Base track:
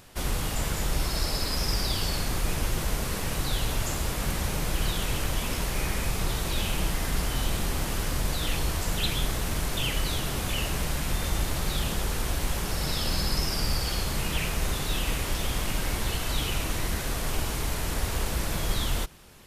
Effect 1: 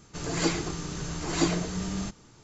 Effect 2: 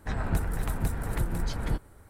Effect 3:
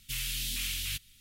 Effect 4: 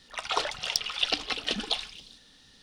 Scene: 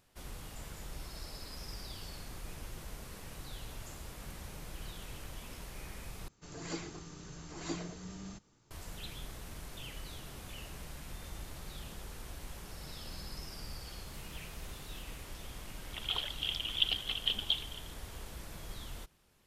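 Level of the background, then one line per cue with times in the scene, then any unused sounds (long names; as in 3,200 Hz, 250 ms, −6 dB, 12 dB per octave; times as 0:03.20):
base track −17.5 dB
0:06.28: overwrite with 1 −14 dB
0:14.05: mix in 3 −6 dB + downward compressor 5 to 1, threshold −52 dBFS
0:15.79: mix in 4 −17.5 dB + low-pass with resonance 3,200 Hz, resonance Q 13
not used: 2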